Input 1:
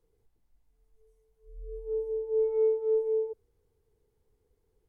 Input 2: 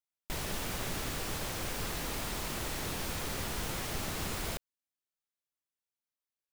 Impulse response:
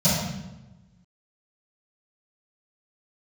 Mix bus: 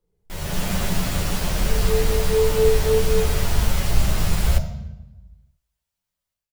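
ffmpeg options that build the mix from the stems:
-filter_complex "[0:a]volume=0.708,asplit=2[s0][s1];[s1]volume=0.0668[s2];[1:a]asplit=2[s3][s4];[s4]adelay=10.4,afreqshift=2.4[s5];[s3][s5]amix=inputs=2:normalize=1,volume=1,asplit=2[s6][s7];[s7]volume=0.0668[s8];[2:a]atrim=start_sample=2205[s9];[s2][s8]amix=inputs=2:normalize=0[s10];[s10][s9]afir=irnorm=-1:irlink=0[s11];[s0][s6][s11]amix=inputs=3:normalize=0,asubboost=boost=9.5:cutoff=57,dynaudnorm=f=300:g=3:m=3.98"

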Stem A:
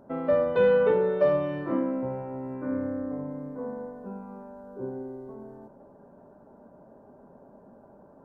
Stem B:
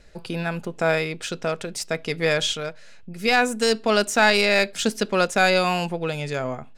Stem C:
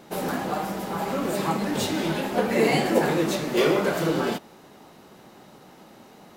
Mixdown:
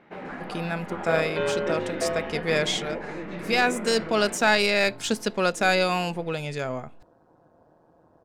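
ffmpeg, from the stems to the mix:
-filter_complex "[0:a]equalizer=f=3900:t=o:w=2.5:g=14.5,aeval=exprs='val(0)*sin(2*PI*79*n/s)':c=same,adelay=800,volume=0.562[s0];[1:a]adelay=250,volume=0.708[s1];[2:a]acompressor=threshold=0.0562:ratio=6,lowpass=f=2100:t=q:w=2.4,volume=0.376[s2];[s0][s1][s2]amix=inputs=3:normalize=0"

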